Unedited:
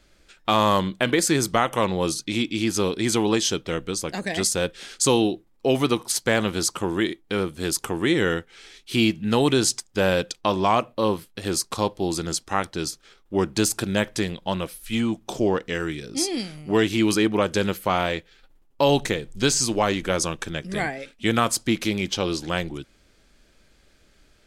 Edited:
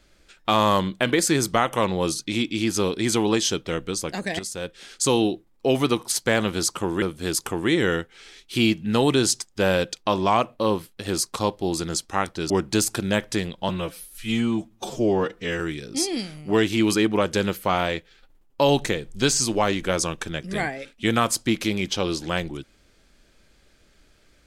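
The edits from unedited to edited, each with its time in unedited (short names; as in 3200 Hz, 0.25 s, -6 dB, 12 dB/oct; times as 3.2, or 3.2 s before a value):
4.39–5.27 fade in, from -12.5 dB
7.02–7.4 cut
12.88–13.34 cut
14.53–15.8 stretch 1.5×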